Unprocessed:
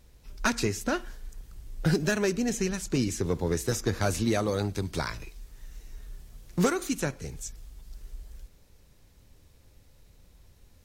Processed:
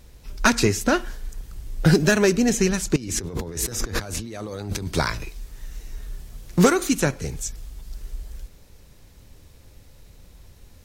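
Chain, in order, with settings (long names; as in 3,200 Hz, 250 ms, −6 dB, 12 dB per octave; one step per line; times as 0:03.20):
0:02.96–0:04.87: compressor whose output falls as the input rises −39 dBFS, ratio −1
level +8.5 dB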